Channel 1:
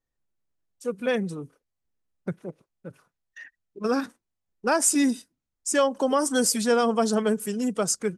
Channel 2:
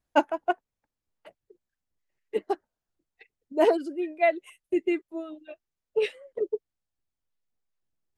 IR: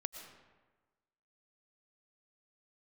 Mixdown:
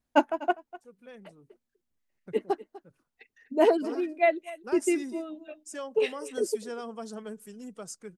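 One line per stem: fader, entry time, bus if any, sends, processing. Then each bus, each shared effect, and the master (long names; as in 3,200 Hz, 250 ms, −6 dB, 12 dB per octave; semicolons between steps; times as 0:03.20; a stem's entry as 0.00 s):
0:01.28 −23.5 dB → 0:01.63 −16.5 dB, 0.00 s, no send, no echo send, no processing
−0.5 dB, 0.00 s, no send, echo send −18.5 dB, parametric band 240 Hz +12.5 dB 0.25 octaves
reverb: not used
echo: single-tap delay 248 ms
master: no processing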